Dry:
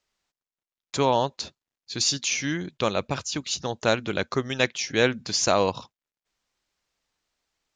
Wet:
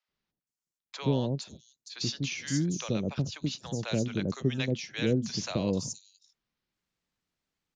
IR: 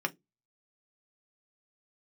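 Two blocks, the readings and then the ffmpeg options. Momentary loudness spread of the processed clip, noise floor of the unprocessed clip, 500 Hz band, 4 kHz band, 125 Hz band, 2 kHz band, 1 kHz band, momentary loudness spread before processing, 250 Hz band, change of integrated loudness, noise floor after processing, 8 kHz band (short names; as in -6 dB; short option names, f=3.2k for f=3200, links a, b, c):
10 LU, under -85 dBFS, -8.5 dB, -9.0 dB, +3.0 dB, -11.0 dB, -16.0 dB, 8 LU, 0.0 dB, -6.0 dB, under -85 dBFS, -10.0 dB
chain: -filter_complex "[0:a]equalizer=f=160:t=o:w=1.9:g=11,acrossover=split=300|580|2200[a][b][c][d];[c]acompressor=threshold=-37dB:ratio=6[e];[a][b][e][d]amix=inputs=4:normalize=0,acrossover=split=680|5900[f][g][h];[f]adelay=80[i];[h]adelay=470[j];[i][g][j]amix=inputs=3:normalize=0,volume=-7dB"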